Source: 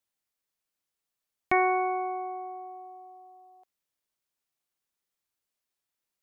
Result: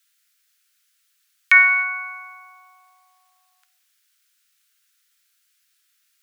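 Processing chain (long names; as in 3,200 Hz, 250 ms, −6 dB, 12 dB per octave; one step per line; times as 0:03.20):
elliptic high-pass filter 1,400 Hz, stop band 70 dB
reverb whose tail is shaped and stops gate 340 ms falling, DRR 11.5 dB
boost into a limiter +21 dB
level −1 dB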